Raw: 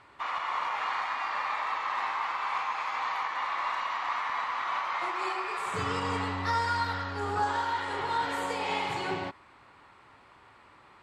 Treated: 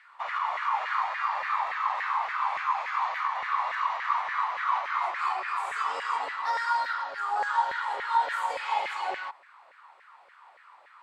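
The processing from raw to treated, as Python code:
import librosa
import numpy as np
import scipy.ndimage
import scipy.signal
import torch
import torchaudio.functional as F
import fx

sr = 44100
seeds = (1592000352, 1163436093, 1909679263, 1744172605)

y = fx.peak_eq(x, sr, hz=74.0, db=-13.5, octaves=2.5)
y = fx.filter_lfo_highpass(y, sr, shape='saw_down', hz=3.5, low_hz=540.0, high_hz=1900.0, q=4.5)
y = y * librosa.db_to_amplitude(-4.0)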